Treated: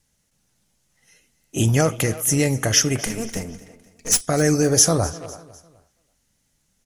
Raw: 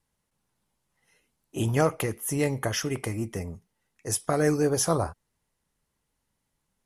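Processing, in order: 3.06–4.21 minimum comb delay 4.3 ms; speakerphone echo 0.33 s, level -17 dB; in parallel at +2 dB: limiter -17.5 dBFS, peak gain reduction 7.5 dB; on the sum: fifteen-band EQ 400 Hz -4 dB, 1000 Hz -9 dB, 6300 Hz +8 dB; on a send: feedback echo 0.252 s, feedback 41%, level -19 dB; on the sum: gain +2 dB

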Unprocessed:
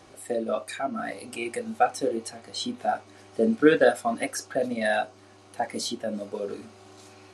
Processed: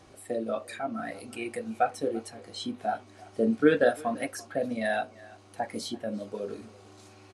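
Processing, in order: low shelf 150 Hz +7 dB; speakerphone echo 0.34 s, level -21 dB; dynamic EQ 6600 Hz, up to -5 dB, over -48 dBFS, Q 1.1; gain -4 dB

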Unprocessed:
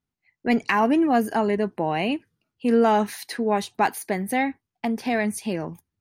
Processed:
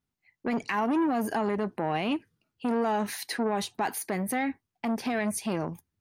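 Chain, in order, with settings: limiter -17.5 dBFS, peak gain reduction 9.5 dB; core saturation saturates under 480 Hz

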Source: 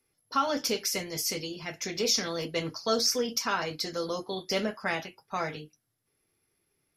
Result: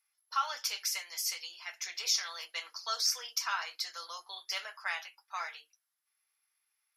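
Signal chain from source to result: HPF 950 Hz 24 dB/oct; gain -3 dB

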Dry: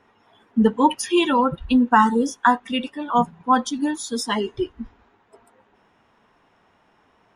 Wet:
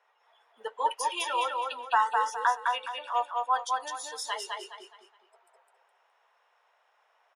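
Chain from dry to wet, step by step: steep high-pass 530 Hz 36 dB/oct; on a send: feedback echo 0.208 s, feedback 33%, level -3 dB; on the sum: gain -8.5 dB

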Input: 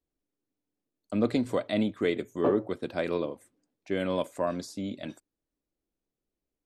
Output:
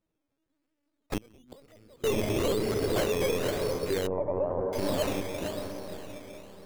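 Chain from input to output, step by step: reverse delay 0.25 s, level -5 dB; in parallel at -2.5 dB: compressor, threshold -35 dBFS, peak gain reduction 15 dB; on the sum: LPC vocoder at 8 kHz pitch kept; on a send: diffused feedback echo 0.542 s, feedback 42%, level -7 dB; on the sum: decimation with a swept rate 12×, swing 60% 1 Hz; low shelf 83 Hz -7.5 dB; notches 50/100/150/200/250/300/350 Hz; limiter -20.5 dBFS, peak gain reduction 11.5 dB; 1.17–2.04 flipped gate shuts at -24 dBFS, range -29 dB; soft clip -22 dBFS, distortion -20 dB; 4.07–4.73 LPF 1100 Hz 24 dB/oct; gain +4 dB

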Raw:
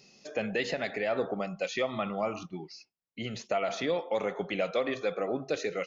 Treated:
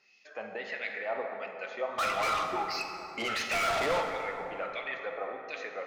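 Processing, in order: LFO band-pass sine 1.5 Hz 840–2400 Hz; 1.98–4.03 overdrive pedal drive 31 dB, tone 6200 Hz, clips at -26.5 dBFS; plate-style reverb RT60 3.4 s, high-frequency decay 0.45×, DRR 3 dB; gain +3 dB

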